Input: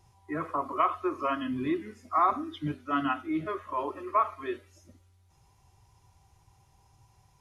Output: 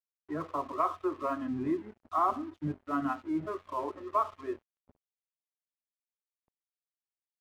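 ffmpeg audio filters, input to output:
ffmpeg -i in.wav -af "lowpass=1200,aeval=exprs='sgn(val(0))*max(abs(val(0))-0.00266,0)':channel_layout=same,volume=-1dB" out.wav

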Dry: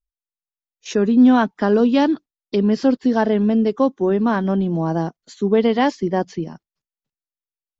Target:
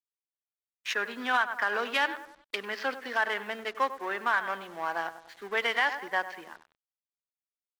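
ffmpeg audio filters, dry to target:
ffmpeg -i in.wav -filter_complex "[0:a]adynamicsmooth=sensitivity=8:basefreq=1500,highpass=960,equalizer=frequency=1800:width=0.82:gain=13.5,asplit=2[link_01][link_02];[link_02]adelay=97,lowpass=frequency=1500:poles=1,volume=-12dB,asplit=2[link_03][link_04];[link_04]adelay=97,lowpass=frequency=1500:poles=1,volume=0.49,asplit=2[link_05][link_06];[link_06]adelay=97,lowpass=frequency=1500:poles=1,volume=0.49,asplit=2[link_07][link_08];[link_08]adelay=97,lowpass=frequency=1500:poles=1,volume=0.49,asplit=2[link_09][link_10];[link_10]adelay=97,lowpass=frequency=1500:poles=1,volume=0.49[link_11];[link_01][link_03][link_05][link_07][link_09][link_11]amix=inputs=6:normalize=0,acrusher=bits=7:mix=0:aa=0.5,alimiter=limit=-9dB:level=0:latency=1:release=97,volume=-6dB" out.wav

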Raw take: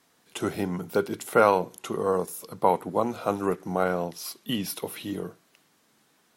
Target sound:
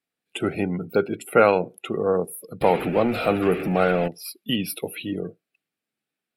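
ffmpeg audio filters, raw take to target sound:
ffmpeg -i in.wav -filter_complex "[0:a]asettb=1/sr,asplit=3[link_01][link_02][link_03];[link_01]atrim=end=2.614[link_04];[link_02]atrim=start=2.61:end=4.08,asetpts=PTS-STARTPTS,afade=type=in:duration=0.004:curve=qsin,afade=type=out:start_time=1.466:duration=0.004:curve=qsin,aeval=exprs='val(0)+0.5*0.0422*sgn(val(0))':channel_layout=same[link_05];[link_03]atrim=start=4.076[link_06];[link_04][link_05]acrossfade=duration=0.004:curve1=hsin:curve2=qsin[link_07];[link_07][link_06]acrossfade=duration=0.004:curve1=qsin:curve2=hsin,equalizer=frequency=1000:width_type=o:width=0.33:gain=-11,equalizer=frequency=2500:width_type=o:width=0.33:gain=7,equalizer=frequency=6300:width_type=o:width=0.33:gain=-9,afftdn=noise_reduction=25:noise_floor=-41,volume=4dB" out.wav

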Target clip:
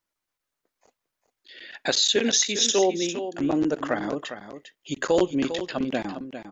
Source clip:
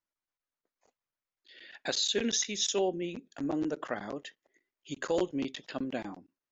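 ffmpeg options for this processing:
ffmpeg -i in.wav -filter_complex "[0:a]asettb=1/sr,asplit=3[link_01][link_02][link_03];[link_01]atrim=end=2.164[link_04];[link_02]atrim=start=2.16:end=3.24,asetpts=PTS-STARTPTS,afade=type=in:duration=0.004:curve=qsin,afade=type=out:start_time=1.076:duration=0.004:curve=qsin,highpass=210[link_05];[link_03]atrim=start=3.236[link_06];[link_04][link_05]acrossfade=duration=0.004:curve1=hsin:curve2=qsin[link_07];[link_07][link_06]acrossfade=duration=0.004:curve1=qsin:curve2=hsin,asplit=2[link_08][link_09];[link_09]aecho=0:1:402:0.299[link_10];[link_08][link_10]amix=inputs=2:normalize=0,volume=8.5dB" out.wav

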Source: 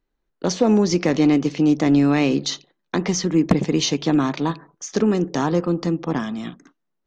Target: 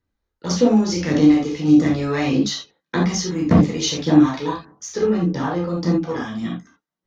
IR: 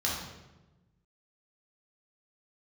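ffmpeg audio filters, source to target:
-filter_complex "[0:a]asettb=1/sr,asplit=3[link_01][link_02][link_03];[link_01]atrim=end=4.964[link_04];[link_02]atrim=start=4.96:end=5.62,asetpts=PTS-STARTPTS,afade=type=in:duration=0.004:curve=qsin,afade=type=out:start_time=0.656:duration=0.004:curve=qsin,lowpass=3500[link_05];[link_03]atrim=start=5.616[link_06];[link_04][link_05]acrossfade=duration=0.004:curve1=hsin:curve2=qsin[link_07];[link_07][link_06]acrossfade=duration=0.004:curve1=qsin:curve2=hsin,aphaser=in_gain=1:out_gain=1:delay=2.4:decay=0.53:speed=1.7:type=sinusoidal[link_08];[1:a]atrim=start_sample=2205,atrim=end_sample=3969[link_09];[link_08][link_09]afir=irnorm=-1:irlink=0,volume=-9dB"

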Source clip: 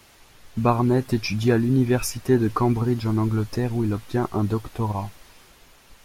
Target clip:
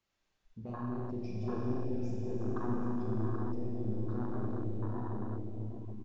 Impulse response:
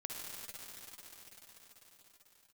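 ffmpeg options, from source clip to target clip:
-filter_complex "[0:a]aresample=16000,asoftclip=type=tanh:threshold=-19.5dB,aresample=44100,tremolo=f=0.69:d=0.29,asplit=2[link_01][link_02];[link_02]adelay=778,lowpass=frequency=2000:poles=1,volume=-4dB,asplit=2[link_03][link_04];[link_04]adelay=778,lowpass=frequency=2000:poles=1,volume=0.37,asplit=2[link_05][link_06];[link_06]adelay=778,lowpass=frequency=2000:poles=1,volume=0.37,asplit=2[link_07][link_08];[link_08]adelay=778,lowpass=frequency=2000:poles=1,volume=0.37,asplit=2[link_09][link_10];[link_10]adelay=778,lowpass=frequency=2000:poles=1,volume=0.37[link_11];[link_01][link_03][link_05][link_07][link_09][link_11]amix=inputs=6:normalize=0[link_12];[1:a]atrim=start_sample=2205,asetrate=74970,aresample=44100[link_13];[link_12][link_13]afir=irnorm=-1:irlink=0,afwtdn=0.02,volume=-6dB"

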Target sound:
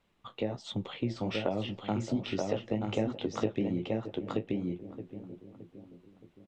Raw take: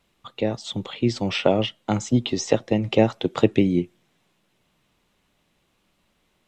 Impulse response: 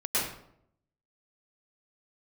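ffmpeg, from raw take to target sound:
-filter_complex "[0:a]asplit=2[link_01][link_02];[link_02]adelay=620,lowpass=frequency=1200:poles=1,volume=-17.5dB,asplit=2[link_03][link_04];[link_04]adelay=620,lowpass=frequency=1200:poles=1,volume=0.47,asplit=2[link_05][link_06];[link_06]adelay=620,lowpass=frequency=1200:poles=1,volume=0.47,asplit=2[link_07][link_08];[link_08]adelay=620,lowpass=frequency=1200:poles=1,volume=0.47[link_09];[link_03][link_05][link_07][link_09]amix=inputs=4:normalize=0[link_10];[link_01][link_10]amix=inputs=2:normalize=0,flanger=delay=9.3:depth=9.8:regen=-36:speed=1.3:shape=sinusoidal,highshelf=frequency=4000:gain=-10.5,asplit=2[link_11][link_12];[link_12]aecho=0:1:929:0.596[link_13];[link_11][link_13]amix=inputs=2:normalize=0,acompressor=threshold=-31dB:ratio=2.5"

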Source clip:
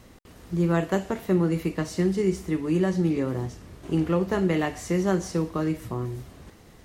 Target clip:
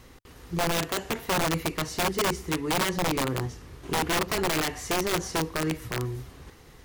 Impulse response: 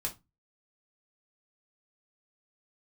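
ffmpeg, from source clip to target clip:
-af "equalizer=frequency=100:width_type=o:width=0.33:gain=-5,equalizer=frequency=200:width_type=o:width=0.33:gain=-12,equalizer=frequency=315:width_type=o:width=0.33:gain=-4,equalizer=frequency=630:width_type=o:width=0.33:gain=-8,equalizer=frequency=8000:width_type=o:width=0.33:gain=-3,aeval=exprs='(mod(12.6*val(0)+1,2)-1)/12.6':channel_layout=same,volume=2dB"

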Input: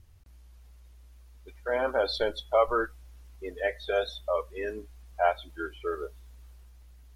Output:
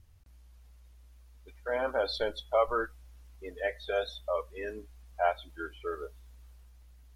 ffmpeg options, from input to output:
ffmpeg -i in.wav -af "equalizer=frequency=370:width=7.2:gain=-5,volume=-3dB" out.wav

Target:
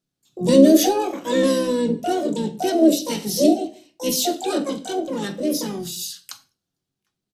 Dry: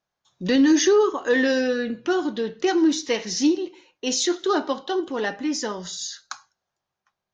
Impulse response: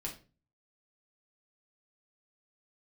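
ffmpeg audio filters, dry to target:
-filter_complex "[0:a]equalizer=frequency=125:width_type=o:width=1:gain=9,equalizer=frequency=250:width_type=o:width=1:gain=7,equalizer=frequency=500:width_type=o:width=1:gain=-7,equalizer=frequency=1000:width_type=o:width=1:gain=-10,equalizer=frequency=2000:width_type=o:width=1:gain=-6,equalizer=frequency=4000:width_type=o:width=1:gain=5,asplit=4[link_01][link_02][link_03][link_04];[link_02]asetrate=33038,aresample=44100,atempo=1.33484,volume=-12dB[link_05];[link_03]asetrate=55563,aresample=44100,atempo=0.793701,volume=-12dB[link_06];[link_04]asetrate=88200,aresample=44100,atempo=0.5,volume=-2dB[link_07];[link_01][link_05][link_06][link_07]amix=inputs=4:normalize=0,asplit=2[link_08][link_09];[1:a]atrim=start_sample=2205[link_10];[link_09][link_10]afir=irnorm=-1:irlink=0,volume=-2.5dB[link_11];[link_08][link_11]amix=inputs=2:normalize=0,volume=-6dB"

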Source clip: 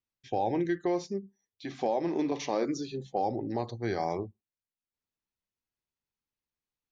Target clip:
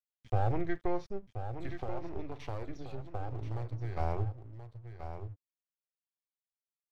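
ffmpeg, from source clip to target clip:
ffmpeg -i in.wav -filter_complex "[0:a]aeval=exprs='if(lt(val(0),0),0.447*val(0),val(0))':channel_layout=same,lowpass=3000,lowshelf=frequency=140:width_type=q:width=3:gain=13,asettb=1/sr,asplit=3[link_01][link_02][link_03];[link_01]atrim=end=1.764[link_04];[link_02]atrim=start=1.76:end=3.97,asetpts=PTS-STARTPTS,afade=type=in:duration=0.004:curve=qsin,afade=type=out:start_time=2.206:duration=0.004:curve=qsin,acompressor=threshold=-33dB:ratio=4[link_05];[link_03]atrim=start=3.966[link_06];[link_04][link_05]acrossfade=duration=0.004:curve1=hsin:curve2=qsin[link_07];[link_07][link_06]acrossfade=duration=0.004:curve1=qsin:curve2=hsin,aeval=exprs='sgn(val(0))*max(abs(val(0))-0.00316,0)':channel_layout=same,aecho=1:1:1029:0.335,volume=-1.5dB" out.wav

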